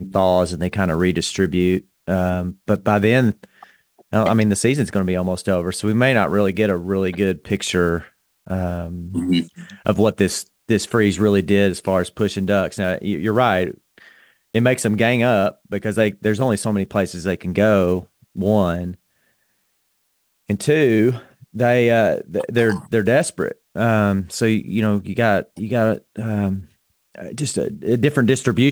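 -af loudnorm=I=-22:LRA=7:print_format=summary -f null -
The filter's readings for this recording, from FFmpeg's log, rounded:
Input Integrated:    -19.3 LUFS
Input True Peak:      -1.7 dBTP
Input LRA:             3.1 LU
Input Threshold:     -29.9 LUFS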